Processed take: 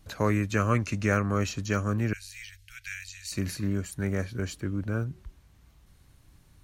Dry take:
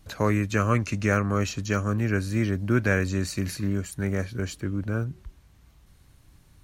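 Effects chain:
0:02.13–0:03.32: inverse Chebyshev band-stop filter 150–800 Hz, stop band 60 dB
level −2 dB

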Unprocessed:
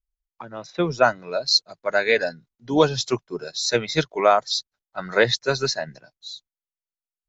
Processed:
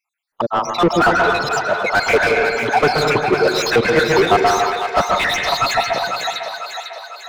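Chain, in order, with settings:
time-frequency cells dropped at random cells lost 68%
in parallel at −7.5 dB: gain into a clipping stage and back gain 21 dB
on the sum: convolution reverb RT60 0.85 s, pre-delay 128 ms, DRR 10 dB
mid-hump overdrive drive 34 dB, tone 1,100 Hz, clips at −5.5 dBFS
echo with a time of its own for lows and highs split 570 Hz, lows 126 ms, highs 499 ms, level −6 dB
level +1.5 dB

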